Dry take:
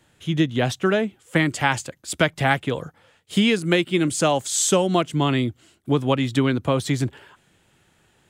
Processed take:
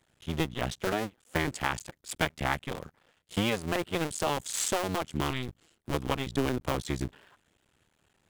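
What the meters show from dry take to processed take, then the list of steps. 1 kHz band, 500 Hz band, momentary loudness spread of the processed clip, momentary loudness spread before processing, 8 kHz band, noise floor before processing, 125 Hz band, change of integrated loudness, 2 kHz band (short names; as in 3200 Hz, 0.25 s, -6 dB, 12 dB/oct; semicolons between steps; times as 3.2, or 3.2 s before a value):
-7.5 dB, -10.5 dB, 9 LU, 9 LU, -9.5 dB, -62 dBFS, -11.0 dB, -10.0 dB, -9.0 dB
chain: cycle switcher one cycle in 2, muted; gain -7 dB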